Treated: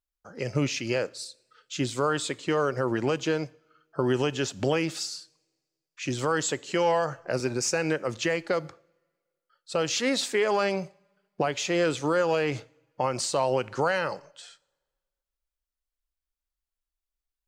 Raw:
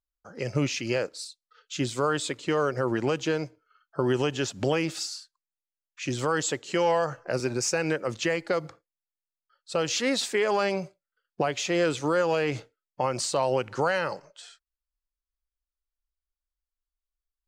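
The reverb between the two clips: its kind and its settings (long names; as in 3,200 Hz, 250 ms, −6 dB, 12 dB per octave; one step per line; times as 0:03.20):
coupled-rooms reverb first 0.58 s, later 1.7 s, from −18 dB, DRR 20 dB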